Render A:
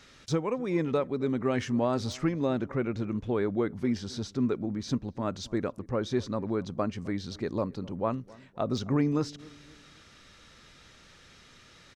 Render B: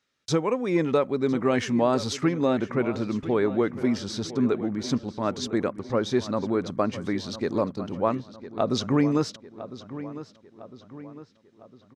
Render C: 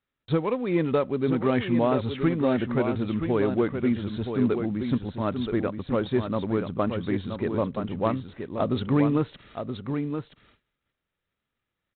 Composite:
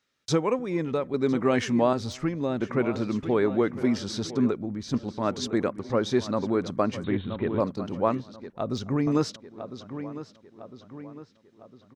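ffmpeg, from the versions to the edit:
-filter_complex "[0:a]asplit=4[a][b][c][d];[1:a]asplit=6[e][f][g][h][i][j];[e]atrim=end=0.592[k];[a]atrim=start=0.588:end=1.142[l];[f]atrim=start=1.138:end=1.932[m];[b]atrim=start=1.928:end=2.612[n];[g]atrim=start=2.608:end=4.512[o];[c]atrim=start=4.508:end=4.942[p];[h]atrim=start=4.938:end=7.042[q];[2:a]atrim=start=7.038:end=7.602[r];[i]atrim=start=7.598:end=8.502[s];[d]atrim=start=8.498:end=9.072[t];[j]atrim=start=9.068[u];[k][l]acrossfade=d=0.004:c1=hsin:c2=hsin[v];[v][m]acrossfade=d=0.004:c1=hsin:c2=hsin[w];[w][n]acrossfade=d=0.004:c1=hsin:c2=hsin[x];[x][o]acrossfade=d=0.004:c1=hsin:c2=hsin[y];[y][p]acrossfade=d=0.004:c1=hsin:c2=hsin[z];[z][q]acrossfade=d=0.004:c1=hsin:c2=hsin[aa];[aa][r]acrossfade=d=0.004:c1=hsin:c2=hsin[ab];[ab][s]acrossfade=d=0.004:c1=hsin:c2=hsin[ac];[ac][t]acrossfade=d=0.004:c1=hsin:c2=hsin[ad];[ad][u]acrossfade=d=0.004:c1=hsin:c2=hsin"

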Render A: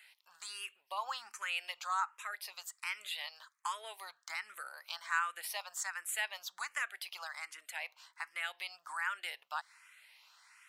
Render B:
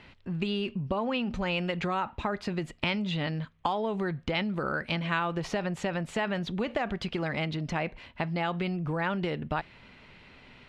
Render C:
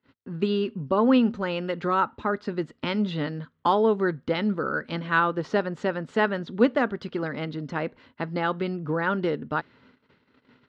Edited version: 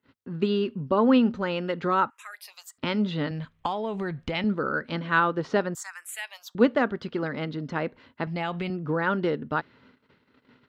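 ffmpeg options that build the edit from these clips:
-filter_complex "[0:a]asplit=2[a][b];[1:a]asplit=2[c][d];[2:a]asplit=5[e][f][g][h][i];[e]atrim=end=2.102[j];[a]atrim=start=2.098:end=2.782[k];[f]atrim=start=2.778:end=3.312[l];[c]atrim=start=3.308:end=4.442[m];[g]atrim=start=4.438:end=5.752[n];[b]atrim=start=5.748:end=6.552[o];[h]atrim=start=6.548:end=8.272[p];[d]atrim=start=8.268:end=8.702[q];[i]atrim=start=8.698[r];[j][k]acrossfade=d=0.004:c1=hsin:c2=hsin[s];[s][l]acrossfade=d=0.004:c1=hsin:c2=hsin[t];[t][m]acrossfade=d=0.004:c1=hsin:c2=hsin[u];[u][n]acrossfade=d=0.004:c1=hsin:c2=hsin[v];[v][o]acrossfade=d=0.004:c1=hsin:c2=hsin[w];[w][p]acrossfade=d=0.004:c1=hsin:c2=hsin[x];[x][q]acrossfade=d=0.004:c1=hsin:c2=hsin[y];[y][r]acrossfade=d=0.004:c1=hsin:c2=hsin"

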